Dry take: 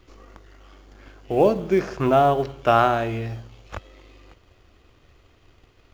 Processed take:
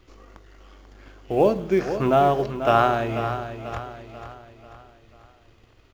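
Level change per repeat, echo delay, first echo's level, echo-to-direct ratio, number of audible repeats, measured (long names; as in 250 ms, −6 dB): −6.5 dB, 490 ms, −10.0 dB, −9.0 dB, 4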